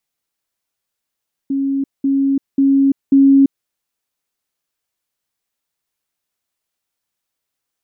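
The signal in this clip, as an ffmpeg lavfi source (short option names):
-f lavfi -i "aevalsrc='pow(10,(-15+3*floor(t/0.54))/20)*sin(2*PI*274*t)*clip(min(mod(t,0.54),0.34-mod(t,0.54))/0.005,0,1)':d=2.16:s=44100"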